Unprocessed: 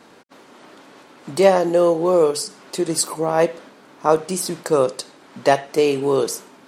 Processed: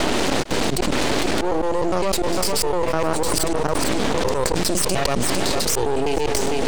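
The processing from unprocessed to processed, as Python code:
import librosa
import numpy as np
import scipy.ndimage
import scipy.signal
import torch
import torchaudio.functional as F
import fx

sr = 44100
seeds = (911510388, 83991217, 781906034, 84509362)

y = fx.block_reorder(x, sr, ms=101.0, group=7)
y = scipy.signal.sosfilt(scipy.signal.butter(16, 9800.0, 'lowpass', fs=sr, output='sos'), y)
y = fx.peak_eq(y, sr, hz=1200.0, db=-9.0, octaves=1.1)
y = fx.auto_swell(y, sr, attack_ms=169.0)
y = np.maximum(y, 0.0)
y = y + 10.0 ** (-21.0 / 20.0) * np.pad(y, (int(453 * sr / 1000.0), 0))[:len(y)]
y = fx.env_flatten(y, sr, amount_pct=100)
y = y * 10.0 ** (-5.5 / 20.0)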